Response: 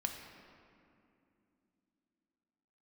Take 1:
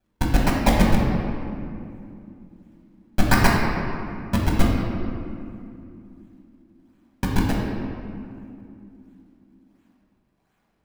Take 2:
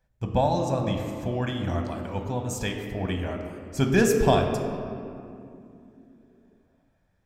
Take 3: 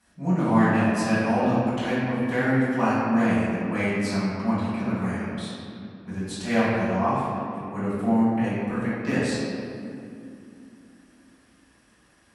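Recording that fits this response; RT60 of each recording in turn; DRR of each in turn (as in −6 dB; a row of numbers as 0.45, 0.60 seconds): 2; 2.6, 2.7, 2.6 seconds; −3.0, 3.0, −11.5 decibels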